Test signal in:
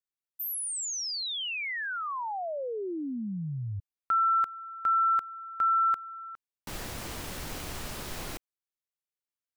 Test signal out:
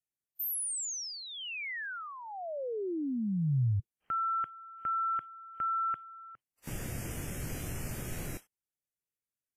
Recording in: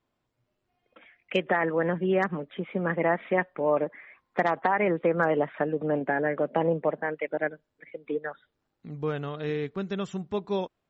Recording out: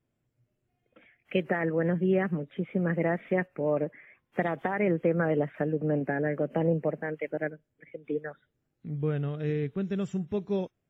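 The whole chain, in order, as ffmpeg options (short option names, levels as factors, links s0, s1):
-af "equalizer=f=125:t=o:w=1:g=7,equalizer=f=1000:t=o:w=1:g=-11,equalizer=f=4000:t=o:w=1:g=-10" -ar 32000 -c:a wmav2 -b:a 32k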